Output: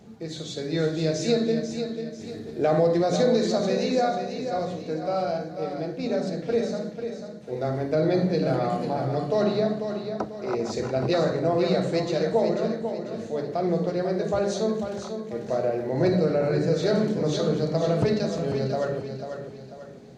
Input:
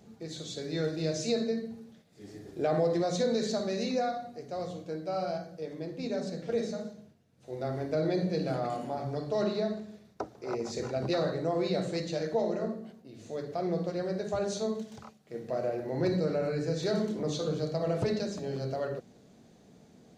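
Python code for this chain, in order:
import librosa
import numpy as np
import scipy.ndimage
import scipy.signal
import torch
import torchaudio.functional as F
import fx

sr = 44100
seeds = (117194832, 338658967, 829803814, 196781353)

p1 = fx.high_shelf(x, sr, hz=6300.0, db=-7.0)
p2 = p1 + fx.echo_feedback(p1, sr, ms=493, feedback_pct=40, wet_db=-8.0, dry=0)
y = p2 * librosa.db_to_amplitude(6.5)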